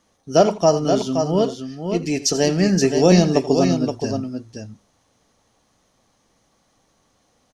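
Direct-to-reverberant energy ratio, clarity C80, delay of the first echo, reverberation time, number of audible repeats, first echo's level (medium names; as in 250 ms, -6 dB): no reverb, no reverb, 84 ms, no reverb, 2, -16.0 dB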